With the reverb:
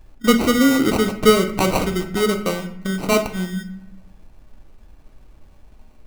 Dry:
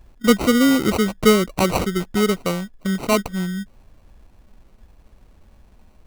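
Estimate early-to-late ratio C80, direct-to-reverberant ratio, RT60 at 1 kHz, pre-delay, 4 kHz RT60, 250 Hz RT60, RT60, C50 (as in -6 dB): 13.5 dB, 5.0 dB, 0.65 s, 3 ms, 0.50 s, 1.1 s, 0.70 s, 10.5 dB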